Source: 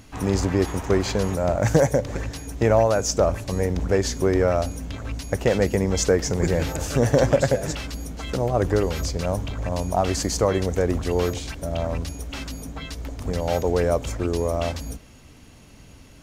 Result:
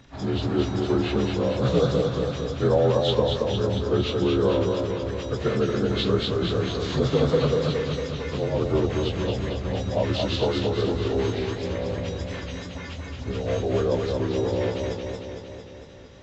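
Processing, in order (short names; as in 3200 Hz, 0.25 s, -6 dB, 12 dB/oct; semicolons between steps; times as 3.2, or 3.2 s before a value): inharmonic rescaling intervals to 83%; warbling echo 0.227 s, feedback 65%, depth 75 cents, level -4 dB; gain -2 dB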